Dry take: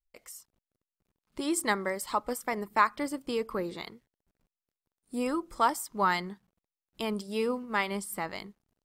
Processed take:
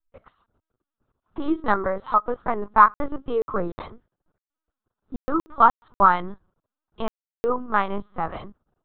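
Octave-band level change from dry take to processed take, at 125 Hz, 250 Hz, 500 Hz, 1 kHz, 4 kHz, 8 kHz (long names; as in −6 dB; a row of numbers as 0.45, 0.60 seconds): +5.5 dB, +4.0 dB, +5.5 dB, +10.0 dB, can't be measured, below −20 dB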